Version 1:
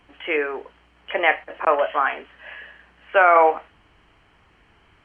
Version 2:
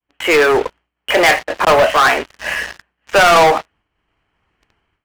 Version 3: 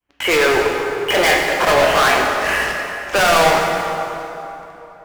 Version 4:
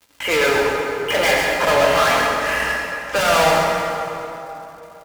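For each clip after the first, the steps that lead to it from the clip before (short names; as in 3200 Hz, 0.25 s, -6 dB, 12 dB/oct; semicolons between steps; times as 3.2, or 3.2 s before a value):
expander -49 dBFS; AGC gain up to 16 dB; sample leveller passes 5; gain -5.5 dB
soft clip -15.5 dBFS, distortion -12 dB; plate-style reverb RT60 3.3 s, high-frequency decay 0.65×, DRR 0.5 dB; gain +2 dB
crackle 300/s -35 dBFS; notch comb 370 Hz; echo 0.132 s -5 dB; gain -2 dB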